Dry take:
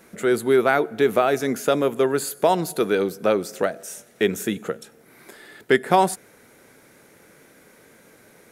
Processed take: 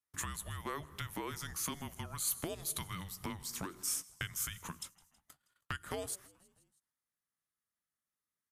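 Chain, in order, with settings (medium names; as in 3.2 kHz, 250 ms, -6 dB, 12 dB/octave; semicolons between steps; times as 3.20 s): gate -40 dBFS, range -39 dB; compression 6:1, threshold -29 dBFS, peak gain reduction 16.5 dB; frequency shift -300 Hz; tilt EQ +2.5 dB/octave; frequency-shifting echo 161 ms, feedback 62%, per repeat -77 Hz, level -23.5 dB; trim -5.5 dB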